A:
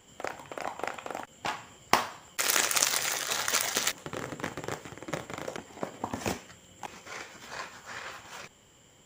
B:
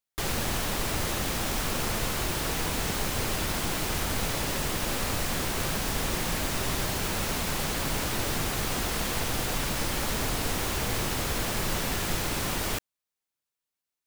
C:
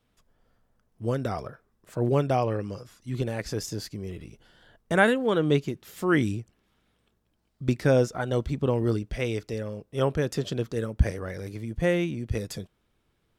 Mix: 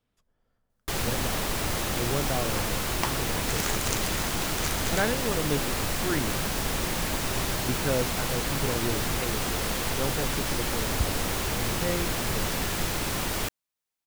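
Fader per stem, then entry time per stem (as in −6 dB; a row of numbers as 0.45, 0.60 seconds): −7.5, +0.5, −7.0 decibels; 1.10, 0.70, 0.00 seconds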